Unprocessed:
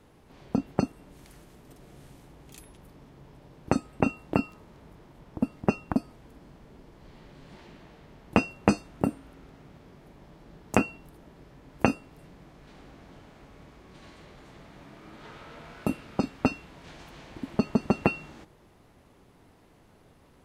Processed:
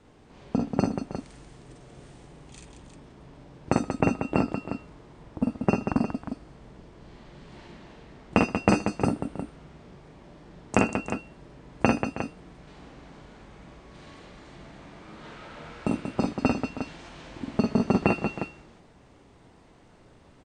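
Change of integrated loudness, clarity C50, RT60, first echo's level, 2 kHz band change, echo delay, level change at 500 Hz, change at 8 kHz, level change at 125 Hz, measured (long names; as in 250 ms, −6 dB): +1.5 dB, no reverb audible, no reverb audible, −3.0 dB, +2.5 dB, 46 ms, +3.0 dB, +2.5 dB, +3.0 dB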